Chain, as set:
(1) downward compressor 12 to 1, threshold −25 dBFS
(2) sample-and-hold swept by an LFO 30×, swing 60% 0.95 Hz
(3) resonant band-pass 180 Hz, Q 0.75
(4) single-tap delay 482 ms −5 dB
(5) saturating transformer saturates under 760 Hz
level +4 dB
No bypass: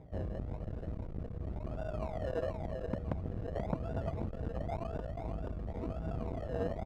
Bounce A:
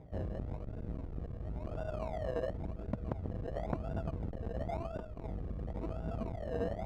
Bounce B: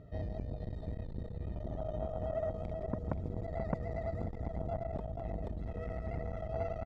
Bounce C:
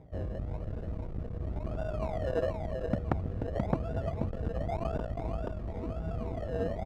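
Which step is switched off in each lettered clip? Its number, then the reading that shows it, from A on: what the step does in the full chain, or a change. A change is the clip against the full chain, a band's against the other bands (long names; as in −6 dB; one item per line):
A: 4, change in crest factor +1.5 dB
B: 2, distortion level −2 dB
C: 1, average gain reduction 3.0 dB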